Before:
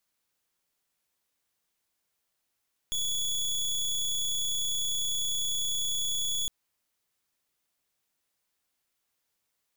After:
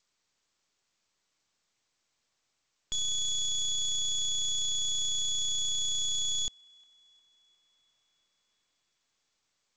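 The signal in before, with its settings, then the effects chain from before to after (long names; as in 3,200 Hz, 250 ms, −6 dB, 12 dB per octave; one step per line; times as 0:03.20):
pulse wave 3,390 Hz, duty 24% −29.5 dBFS 3.56 s
delay with a band-pass on its return 356 ms, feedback 57%, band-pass 1,500 Hz, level −22.5 dB
G.722 64 kbit/s 16,000 Hz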